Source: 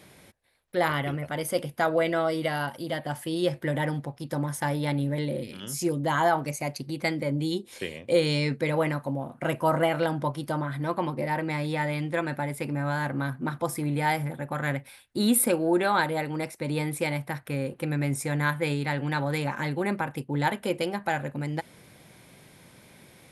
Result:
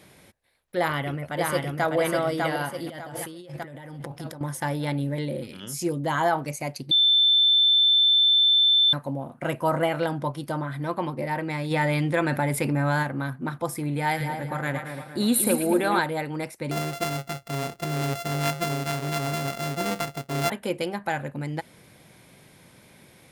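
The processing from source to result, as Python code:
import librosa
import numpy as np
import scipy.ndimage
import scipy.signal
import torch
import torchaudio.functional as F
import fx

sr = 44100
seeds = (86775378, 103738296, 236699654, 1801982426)

y = fx.echo_throw(x, sr, start_s=0.78, length_s=1.18, ms=600, feedback_pct=45, wet_db=-2.5)
y = fx.over_compress(y, sr, threshold_db=-38.0, ratio=-1.0, at=(2.86, 4.41))
y = fx.env_flatten(y, sr, amount_pct=50, at=(11.7, 13.02), fade=0.02)
y = fx.echo_split(y, sr, split_hz=1500.0, low_ms=233, high_ms=111, feedback_pct=52, wet_db=-6.5, at=(13.97, 15.99))
y = fx.sample_sort(y, sr, block=64, at=(16.71, 20.5))
y = fx.edit(y, sr, fx.bleep(start_s=6.91, length_s=2.02, hz=3540.0, db=-15.5), tone=tone)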